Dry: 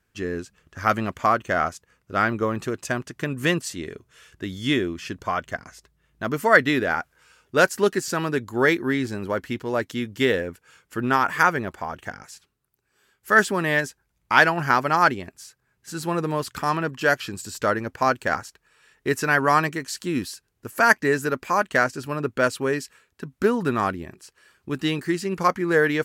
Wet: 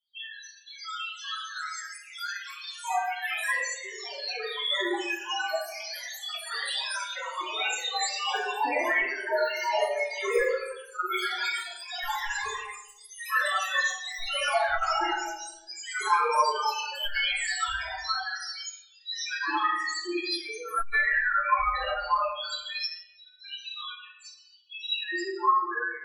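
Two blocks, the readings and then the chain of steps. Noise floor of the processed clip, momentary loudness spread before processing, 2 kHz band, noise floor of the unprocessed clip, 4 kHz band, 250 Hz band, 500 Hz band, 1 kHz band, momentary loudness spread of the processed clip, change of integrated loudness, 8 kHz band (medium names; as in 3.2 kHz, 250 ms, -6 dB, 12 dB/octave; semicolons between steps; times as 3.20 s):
-54 dBFS, 16 LU, -5.0 dB, -72 dBFS, +4.0 dB, -17.0 dB, -9.0 dB, -4.0 dB, 14 LU, -5.5 dB, -1.0 dB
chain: fade out at the end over 1.43 s; treble shelf 2.2 kHz +9 dB; de-hum 83.21 Hz, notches 32; in parallel at -4.5 dB: wavefolder -13 dBFS; on the sum: LFO high-pass square 0.18 Hz 770–3500 Hz; integer overflow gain 10.5 dB; loudest bins only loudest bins 1; simulated room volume 290 m³, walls mixed, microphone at 3 m; ever faster or slower copies 544 ms, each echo +4 st, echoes 3, each echo -6 dB; transformer saturation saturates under 69 Hz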